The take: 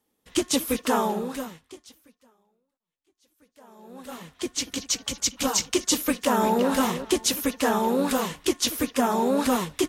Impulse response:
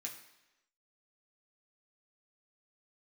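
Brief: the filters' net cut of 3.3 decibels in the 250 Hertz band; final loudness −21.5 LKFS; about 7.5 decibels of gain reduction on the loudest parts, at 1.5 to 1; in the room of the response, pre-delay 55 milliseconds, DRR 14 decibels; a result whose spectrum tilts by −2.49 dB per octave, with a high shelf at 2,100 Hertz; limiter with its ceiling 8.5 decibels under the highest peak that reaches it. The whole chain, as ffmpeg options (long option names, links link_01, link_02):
-filter_complex "[0:a]equalizer=frequency=250:width_type=o:gain=-4,highshelf=frequency=2100:gain=5,acompressor=threshold=-37dB:ratio=1.5,alimiter=limit=-19.5dB:level=0:latency=1,asplit=2[link_01][link_02];[1:a]atrim=start_sample=2205,adelay=55[link_03];[link_02][link_03]afir=irnorm=-1:irlink=0,volume=-11.5dB[link_04];[link_01][link_04]amix=inputs=2:normalize=0,volume=10dB"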